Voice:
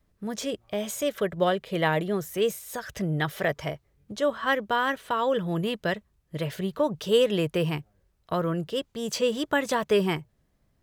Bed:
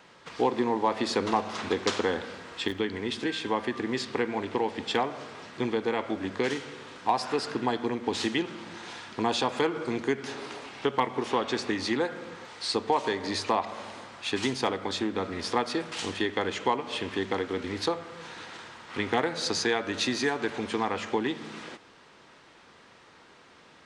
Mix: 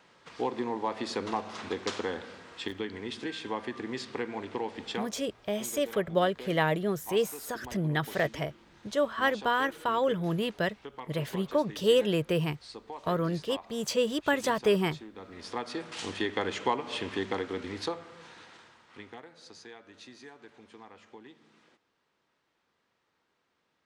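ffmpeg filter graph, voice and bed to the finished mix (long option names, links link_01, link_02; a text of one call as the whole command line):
ffmpeg -i stem1.wav -i stem2.wav -filter_complex "[0:a]adelay=4750,volume=-2dB[link_01];[1:a]volume=9dB,afade=type=out:start_time=4.9:duration=0.21:silence=0.281838,afade=type=in:start_time=15.14:duration=1.18:silence=0.177828,afade=type=out:start_time=17.15:duration=2.06:silence=0.1[link_02];[link_01][link_02]amix=inputs=2:normalize=0" out.wav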